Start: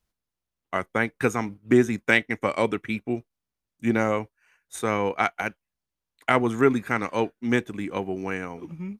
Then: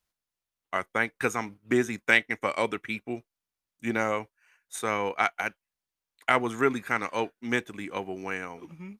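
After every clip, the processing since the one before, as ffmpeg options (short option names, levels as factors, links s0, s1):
-af "lowshelf=f=480:g=-9.5"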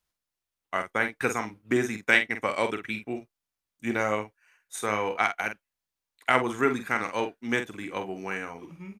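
-filter_complex "[0:a]asplit=2[s0][s1];[s1]adelay=47,volume=0.398[s2];[s0][s2]amix=inputs=2:normalize=0"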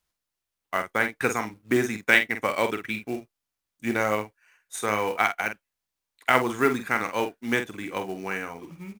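-af "acrusher=bits=5:mode=log:mix=0:aa=0.000001,volume=1.26"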